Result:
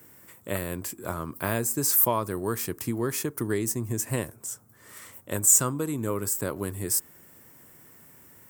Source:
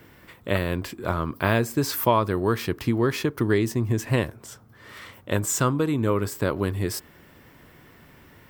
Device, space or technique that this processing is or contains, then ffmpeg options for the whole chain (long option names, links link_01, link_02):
budget condenser microphone: -af "highpass=88,highshelf=frequency=5600:width_type=q:width=1.5:gain=14,volume=-6dB"